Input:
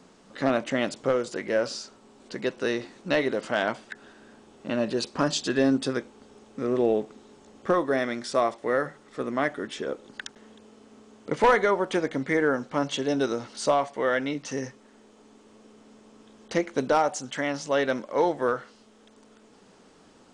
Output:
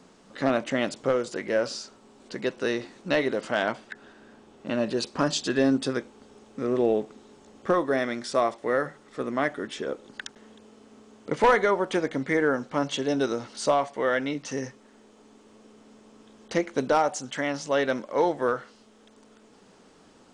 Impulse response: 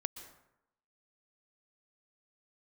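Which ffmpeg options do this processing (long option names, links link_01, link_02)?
-filter_complex "[0:a]asettb=1/sr,asplit=3[link_01][link_02][link_03];[link_01]atrim=end=3.724[link_04];[link_02]atrim=start=3.72:end=4.67,asetpts=PTS-STARTPTS,afade=type=in:duration=0.004:curve=qsin,afade=type=out:start_time=0.946:duration=0.004:curve=qsin,highshelf=frequency=6100:gain=-6.5[link_05];[link_03]atrim=start=4.666[link_06];[link_04][link_05]acrossfade=duration=0.004:curve1=hsin:curve2=qsin[link_07];[link_07][link_06]acrossfade=duration=0.004:curve1=qsin:curve2=hsin"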